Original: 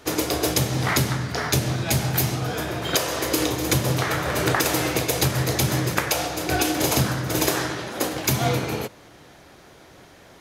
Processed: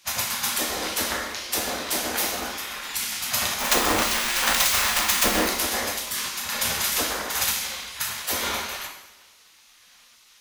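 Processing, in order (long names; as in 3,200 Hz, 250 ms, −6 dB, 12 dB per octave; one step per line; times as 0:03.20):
0:03.60–0:05.47: each half-wave held at its own peak
gate on every frequency bin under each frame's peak −15 dB weak
coupled-rooms reverb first 0.79 s, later 2.1 s, from −18 dB, DRR 0.5 dB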